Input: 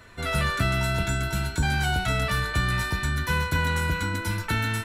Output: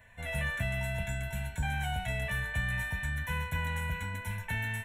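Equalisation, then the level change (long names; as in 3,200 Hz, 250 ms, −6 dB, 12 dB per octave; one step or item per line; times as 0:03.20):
parametric band 1,700 Hz +6 dB 0.28 octaves
phaser with its sweep stopped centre 1,300 Hz, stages 6
−7.0 dB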